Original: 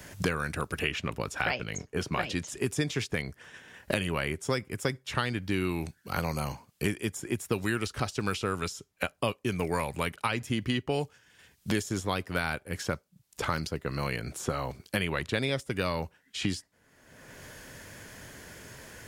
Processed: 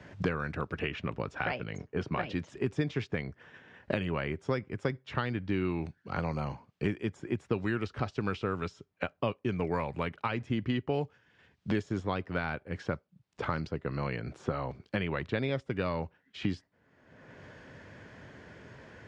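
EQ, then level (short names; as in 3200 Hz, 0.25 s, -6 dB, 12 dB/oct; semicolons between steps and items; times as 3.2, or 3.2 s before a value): HPF 73 Hz; air absorption 78 m; tape spacing loss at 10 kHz 21 dB; 0.0 dB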